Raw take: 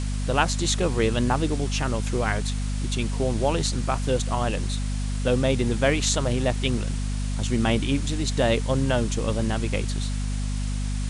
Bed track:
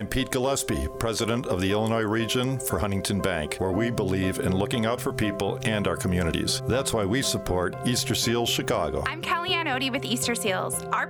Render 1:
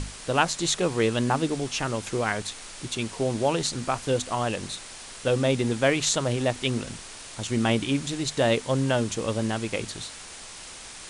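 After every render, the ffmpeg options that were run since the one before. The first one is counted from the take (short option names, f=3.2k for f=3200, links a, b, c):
-af "bandreject=f=50:t=h:w=6,bandreject=f=100:t=h:w=6,bandreject=f=150:t=h:w=6,bandreject=f=200:t=h:w=6,bandreject=f=250:t=h:w=6"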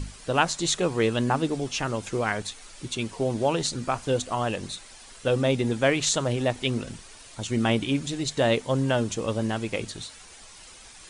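-af "afftdn=nr=9:nf=-42"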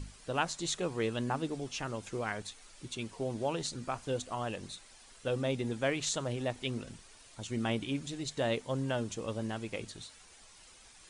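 -af "volume=-9.5dB"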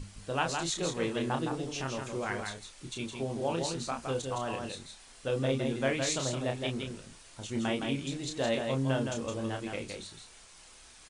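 -filter_complex "[0:a]asplit=2[a][b];[b]adelay=30,volume=-5dB[c];[a][c]amix=inputs=2:normalize=0,aecho=1:1:164:0.562"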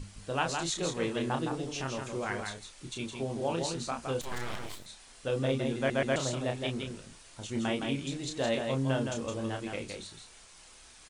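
-filter_complex "[0:a]asettb=1/sr,asplit=3[a][b][c];[a]atrim=end=4.214[d];[b]atrim=start=4.21:end=4.86,asetpts=PTS-STARTPTS,afade=t=in:d=0.004:c=qsin,afade=t=out:st=0.646:d=0.004:c=qsin,aeval=exprs='abs(val(0))':c=same[e];[c]atrim=start=4.856[f];[d][e]acrossfade=d=0.004:c1=hsin:c2=qsin[g];[g][f]acrossfade=d=0.004:c1=qsin:c2=hsin,asplit=4[h][i][j][k];[h]atrim=end=5.902[l];[i]atrim=start=5.768:end=5.902[m];[j]atrim=start=5.768:end=5.902[n];[k]atrim=start=6.158[o];[l][m]acrossfade=d=0.004:c1=hsin:c2=hsin[p];[p][n]acrossfade=d=0.004:c1=hsin:c2=hsin[q];[q][o]acrossfade=d=0.004:c1=hsin:c2=hsin"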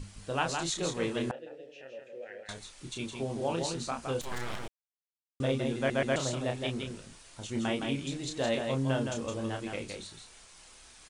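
-filter_complex "[0:a]asettb=1/sr,asplit=3[a][b][c];[a]atrim=end=1.314[d];[b]atrim=start=1.31:end=2.49,asetpts=PTS-STARTPTS,afade=t=in:d=0.004:c=qsin,afade=t=out:st=1.176:d=0.004:c=qsin,asplit=3[e][f][g];[e]bandpass=f=530:t=q:w=8,volume=0dB[h];[f]bandpass=f=1.84k:t=q:w=8,volume=-6dB[i];[g]bandpass=f=2.48k:t=q:w=8,volume=-9dB[j];[h][i][j]amix=inputs=3:normalize=0[k];[c]atrim=start=2.486[l];[d][k]acrossfade=d=0.004:c1=hsin:c2=qsin[m];[m][l]acrossfade=d=0.004:c1=qsin:c2=hsin,asplit=3[n][o][p];[n]atrim=end=4.68,asetpts=PTS-STARTPTS,afade=t=out:st=4.676:d=0.004:c=hsin[q];[o]atrim=start=4.68:end=5.4,asetpts=PTS-STARTPTS,volume=0[r];[p]atrim=start=5.4,asetpts=PTS-STARTPTS,afade=t=in:d=0.004:c=hsin[s];[q][r][s]concat=n=3:v=0:a=1"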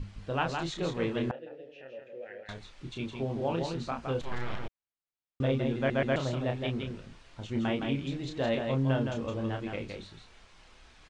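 -af "lowpass=3.4k,lowshelf=f=170:g=5.5"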